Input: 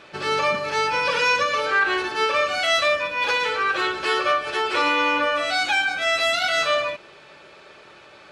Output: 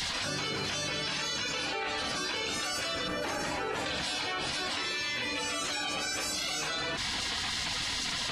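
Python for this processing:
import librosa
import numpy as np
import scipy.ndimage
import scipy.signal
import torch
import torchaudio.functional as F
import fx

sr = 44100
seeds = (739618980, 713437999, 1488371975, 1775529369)

y = fx.spec_gate(x, sr, threshold_db=-15, keep='weak')
y = fx.peak_eq(y, sr, hz=3700.0, db=-12.0, octaves=1.6, at=(3.08, 3.86))
y = fx.env_flatten(y, sr, amount_pct=100)
y = y * 10.0 ** (-5.5 / 20.0)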